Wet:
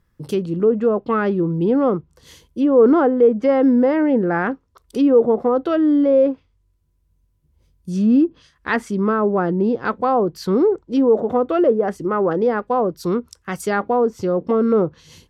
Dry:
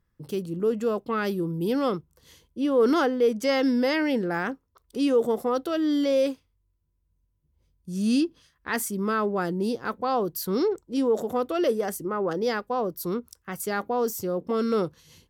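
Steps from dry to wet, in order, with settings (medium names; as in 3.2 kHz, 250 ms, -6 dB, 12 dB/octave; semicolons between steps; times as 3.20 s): low-pass that closes with the level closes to 1 kHz, closed at -21 dBFS; trim +8.5 dB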